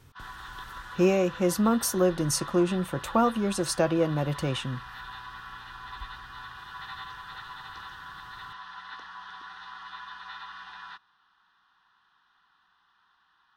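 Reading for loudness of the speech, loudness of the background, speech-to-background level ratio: -26.0 LUFS, -42.0 LUFS, 16.0 dB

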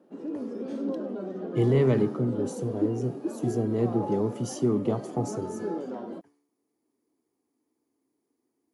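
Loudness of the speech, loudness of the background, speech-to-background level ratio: -28.0 LUFS, -34.5 LUFS, 6.5 dB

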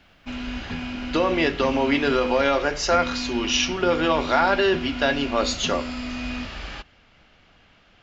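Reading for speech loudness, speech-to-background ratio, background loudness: -22.5 LUFS, 9.5 dB, -32.0 LUFS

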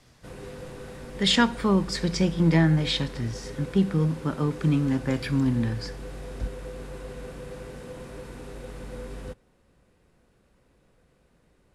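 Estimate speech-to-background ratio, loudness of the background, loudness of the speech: 15.5 dB, -40.0 LUFS, -24.5 LUFS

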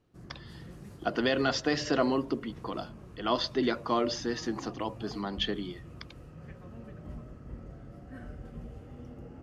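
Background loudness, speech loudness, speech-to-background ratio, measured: -47.5 LUFS, -31.0 LUFS, 16.5 dB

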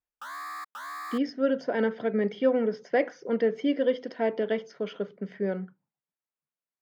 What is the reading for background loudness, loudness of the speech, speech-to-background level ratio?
-39.0 LUFS, -28.5 LUFS, 10.5 dB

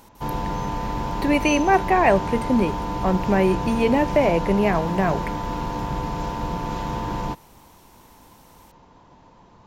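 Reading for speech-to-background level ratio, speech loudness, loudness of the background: 7.0 dB, -21.0 LUFS, -28.0 LUFS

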